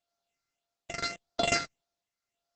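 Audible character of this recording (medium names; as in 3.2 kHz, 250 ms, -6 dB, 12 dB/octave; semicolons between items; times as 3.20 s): a buzz of ramps at a fixed pitch in blocks of 64 samples; phasing stages 6, 1.7 Hz, lowest notch 800–2600 Hz; tremolo triangle 0.83 Hz, depth 65%; Opus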